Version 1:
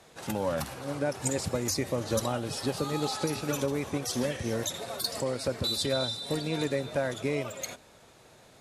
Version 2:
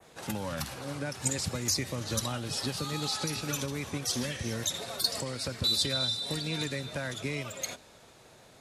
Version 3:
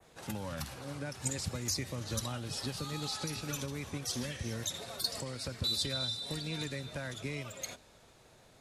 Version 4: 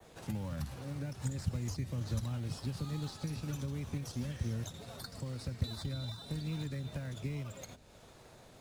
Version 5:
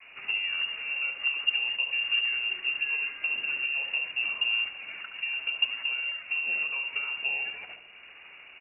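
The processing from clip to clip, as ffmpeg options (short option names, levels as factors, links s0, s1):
-filter_complex "[0:a]adynamicequalizer=threshold=0.00708:dfrequency=4600:dqfactor=0.86:tfrequency=4600:tqfactor=0.86:attack=5:release=100:ratio=0.375:range=2:mode=boostabove:tftype=bell,acrossover=split=240|1100|2500[s0][s1][s2][s3];[s1]acompressor=threshold=0.01:ratio=6[s4];[s0][s4][s2][s3]amix=inputs=4:normalize=0"
-af "lowshelf=f=65:g=11,volume=0.531"
-filter_complex "[0:a]acrossover=split=220[s0][s1];[s1]acompressor=threshold=0.00224:ratio=3[s2];[s0][s2]amix=inputs=2:normalize=0,asplit=2[s3][s4];[s4]acrusher=samples=17:mix=1:aa=0.000001:lfo=1:lforange=10.2:lforate=1.3,volume=0.531[s5];[s3][s5]amix=inputs=2:normalize=0,volume=1.12"
-filter_complex "[0:a]lowpass=f=2500:t=q:w=0.5098,lowpass=f=2500:t=q:w=0.6013,lowpass=f=2500:t=q:w=0.9,lowpass=f=2500:t=q:w=2.563,afreqshift=-2900,asplit=2[s0][s1];[s1]adelay=71,lowpass=f=1100:p=1,volume=0.631,asplit=2[s2][s3];[s3]adelay=71,lowpass=f=1100:p=1,volume=0.54,asplit=2[s4][s5];[s5]adelay=71,lowpass=f=1100:p=1,volume=0.54,asplit=2[s6][s7];[s7]adelay=71,lowpass=f=1100:p=1,volume=0.54,asplit=2[s8][s9];[s9]adelay=71,lowpass=f=1100:p=1,volume=0.54,asplit=2[s10][s11];[s11]adelay=71,lowpass=f=1100:p=1,volume=0.54,asplit=2[s12][s13];[s13]adelay=71,lowpass=f=1100:p=1,volume=0.54[s14];[s0][s2][s4][s6][s8][s10][s12][s14]amix=inputs=8:normalize=0,volume=2.37"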